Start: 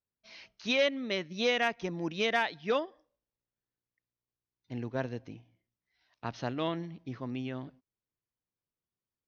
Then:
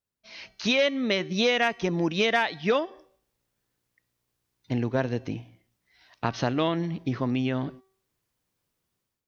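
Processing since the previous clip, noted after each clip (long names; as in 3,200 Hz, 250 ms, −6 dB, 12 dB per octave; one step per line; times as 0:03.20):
downward compressor 2.5 to 1, threshold −39 dBFS, peak gain reduction 11 dB
hum removal 382.4 Hz, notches 32
automatic gain control gain up to 11 dB
level +3.5 dB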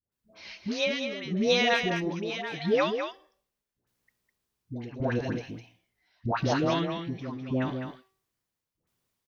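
shaped tremolo saw down 0.8 Hz, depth 90%
all-pass dispersion highs, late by 122 ms, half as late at 770 Hz
on a send: single-tap delay 205 ms −7 dB
on the sum: level +1.5 dB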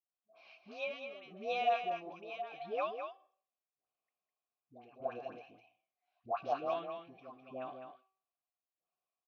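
formant filter a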